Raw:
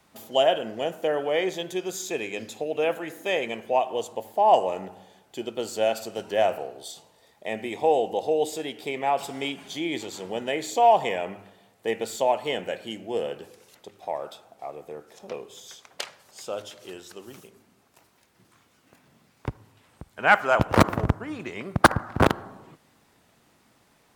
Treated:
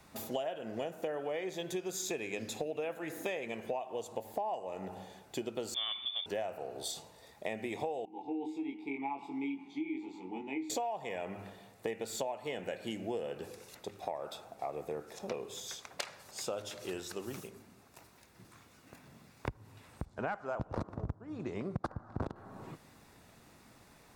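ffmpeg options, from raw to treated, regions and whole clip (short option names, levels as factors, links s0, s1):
-filter_complex "[0:a]asettb=1/sr,asplit=3[s0][s1][s2];[s0]atrim=end=5.744[s3];[s1]atrim=start=5.74:end=6.26,asetpts=PTS-STARTPTS,afade=t=in:d=0.004:c=qsin,afade=t=out:st=0.516:d=0.004:c=qsin,lowshelf=f=350:t=q:w=1.5:g=12,lowpass=f=3100:t=q:w=0.5098,lowpass=f=3100:t=q:w=0.6013,lowpass=f=3100:t=q:w=0.9,lowpass=f=3100:t=q:w=2.563,afreqshift=-3700,highpass=f=110:p=1[s4];[s2]atrim=start=6.256[s5];[s3][s4]acrossfade=d=0.004:c1=hsin:c2=qsin[s6];[s6][s5]acrossfade=d=0.004:c1=qsin:c2=hsin,asettb=1/sr,asplit=3[s7][s8][s9];[s7]atrim=end=8.054[s10];[s8]atrim=start=8.05:end=10.7,asetpts=PTS-STARTPTS,afade=t=in:d=0.004:c=qsin,afade=t=out:st=2.646:d=0.004:c=qsin,asplit=3[s11][s12][s13];[s11]bandpass=f=300:t=q:w=8,volume=1[s14];[s12]bandpass=f=870:t=q:w=8,volume=0.501[s15];[s13]bandpass=f=2240:t=q:w=8,volume=0.355[s16];[s14][s15][s16]amix=inputs=3:normalize=0,asplit=2[s17][s18];[s18]adelay=22,volume=0.75[s19];[s17][s19]amix=inputs=2:normalize=0,atrim=end_sample=116865[s20];[s9]atrim=start=10.696[s21];[s10][s20]acrossfade=d=0.004:c1=hsin:c2=qsin[s22];[s22][s21]acrossfade=d=0.004:c1=qsin:c2=hsin,asettb=1/sr,asplit=3[s23][s24][s25];[s23]atrim=end=20.054[s26];[s24]atrim=start=20.05:end=22.36,asetpts=PTS-STARTPTS,afade=t=in:d=0.004:c=qsin,afade=t=out:st=2.306:d=0.004:c=qsin,lowpass=5200,equalizer=f=2300:w=0.85:g=-12.5[s27];[s25]atrim=start=22.356[s28];[s26][s27]acrossfade=d=0.004:c1=hsin:c2=qsin[s29];[s29][s28]acrossfade=d=0.004:c1=qsin:c2=hsin,lowshelf=f=100:g=8,bandreject=f=3100:w=11,acompressor=threshold=0.0178:ratio=16,volume=1.19"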